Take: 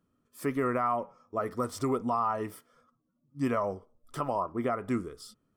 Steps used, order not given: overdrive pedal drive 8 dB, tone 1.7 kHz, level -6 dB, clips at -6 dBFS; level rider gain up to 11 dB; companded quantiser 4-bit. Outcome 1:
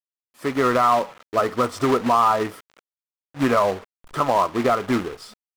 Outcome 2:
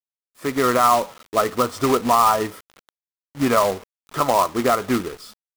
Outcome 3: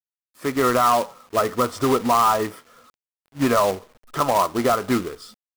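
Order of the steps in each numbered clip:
companded quantiser > level rider > overdrive pedal; overdrive pedal > companded quantiser > level rider; level rider > overdrive pedal > companded quantiser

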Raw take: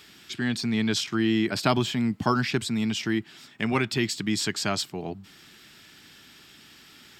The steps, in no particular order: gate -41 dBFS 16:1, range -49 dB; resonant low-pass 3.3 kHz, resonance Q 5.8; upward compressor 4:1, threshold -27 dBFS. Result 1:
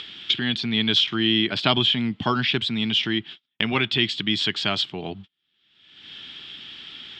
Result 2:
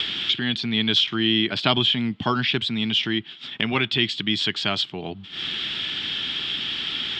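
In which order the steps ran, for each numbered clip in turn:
gate > upward compressor > resonant low-pass; upward compressor > gate > resonant low-pass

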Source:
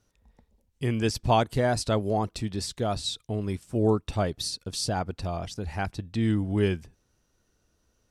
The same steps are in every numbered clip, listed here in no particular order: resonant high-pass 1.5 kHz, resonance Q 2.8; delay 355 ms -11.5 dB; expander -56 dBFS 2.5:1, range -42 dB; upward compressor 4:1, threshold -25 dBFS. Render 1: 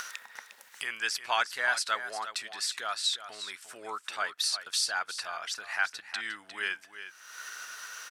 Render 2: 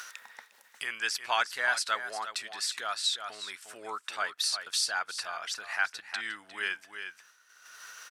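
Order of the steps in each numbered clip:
upward compressor > resonant high-pass > expander > delay; delay > expander > upward compressor > resonant high-pass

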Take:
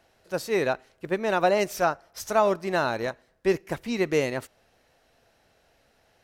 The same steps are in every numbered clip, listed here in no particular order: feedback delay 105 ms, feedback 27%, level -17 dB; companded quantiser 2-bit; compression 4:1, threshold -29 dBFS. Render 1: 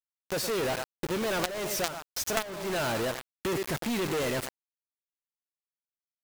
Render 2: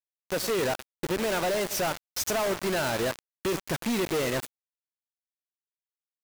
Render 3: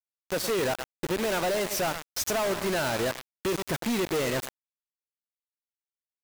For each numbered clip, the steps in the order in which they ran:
feedback delay > companded quantiser > compression; compression > feedback delay > companded quantiser; feedback delay > compression > companded quantiser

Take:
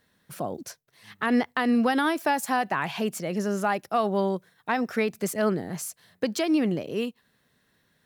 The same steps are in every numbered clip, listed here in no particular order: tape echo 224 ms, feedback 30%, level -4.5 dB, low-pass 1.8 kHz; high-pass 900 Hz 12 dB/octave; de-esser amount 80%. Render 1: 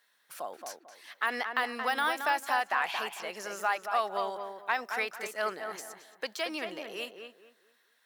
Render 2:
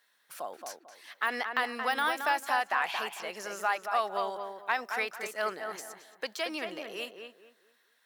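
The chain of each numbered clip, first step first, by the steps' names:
de-esser > tape echo > high-pass; high-pass > de-esser > tape echo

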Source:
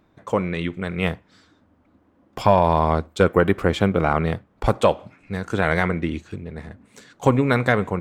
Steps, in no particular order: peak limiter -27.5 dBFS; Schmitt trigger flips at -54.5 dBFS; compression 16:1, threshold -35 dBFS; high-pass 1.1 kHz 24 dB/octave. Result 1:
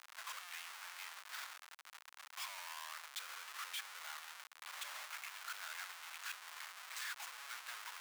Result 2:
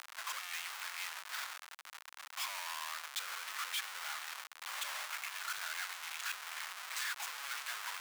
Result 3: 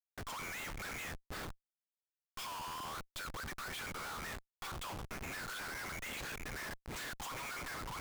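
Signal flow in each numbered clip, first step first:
peak limiter > compression > Schmitt trigger > high-pass; Schmitt trigger > compression > high-pass > peak limiter; high-pass > compression > Schmitt trigger > peak limiter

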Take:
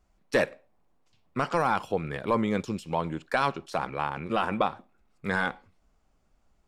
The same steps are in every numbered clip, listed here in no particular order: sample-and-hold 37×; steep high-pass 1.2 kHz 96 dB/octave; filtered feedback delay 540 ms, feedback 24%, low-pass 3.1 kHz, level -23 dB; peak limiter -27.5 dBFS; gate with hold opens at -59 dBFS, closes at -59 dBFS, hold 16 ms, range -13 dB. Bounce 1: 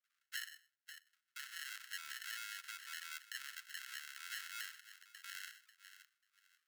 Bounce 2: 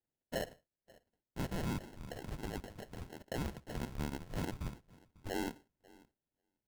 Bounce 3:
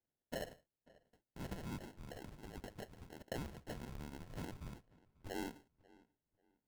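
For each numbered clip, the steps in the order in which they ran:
gate with hold > filtered feedback delay > peak limiter > sample-and-hold > steep high-pass; steep high-pass > peak limiter > filtered feedback delay > sample-and-hold > gate with hold; peak limiter > steep high-pass > gate with hold > sample-and-hold > filtered feedback delay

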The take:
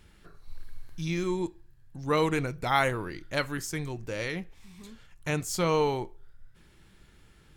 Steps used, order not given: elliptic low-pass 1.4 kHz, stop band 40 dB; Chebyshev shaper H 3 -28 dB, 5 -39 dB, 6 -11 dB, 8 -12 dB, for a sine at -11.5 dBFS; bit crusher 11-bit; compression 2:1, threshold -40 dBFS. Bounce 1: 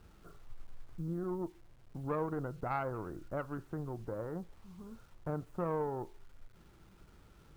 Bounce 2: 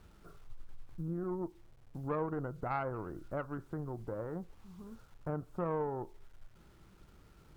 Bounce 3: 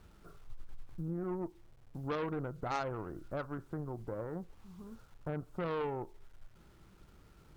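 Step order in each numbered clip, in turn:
elliptic low-pass > compression > Chebyshev shaper > bit crusher; elliptic low-pass > bit crusher > compression > Chebyshev shaper; elliptic low-pass > bit crusher > Chebyshev shaper > compression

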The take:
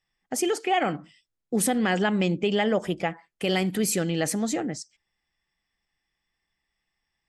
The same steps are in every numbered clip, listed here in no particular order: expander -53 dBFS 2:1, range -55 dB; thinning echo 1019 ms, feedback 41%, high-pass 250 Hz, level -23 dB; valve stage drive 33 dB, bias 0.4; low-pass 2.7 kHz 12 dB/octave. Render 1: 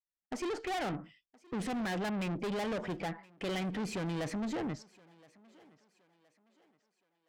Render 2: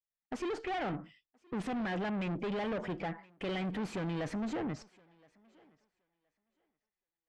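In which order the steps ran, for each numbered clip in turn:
low-pass > valve stage > expander > thinning echo; valve stage > thinning echo > expander > low-pass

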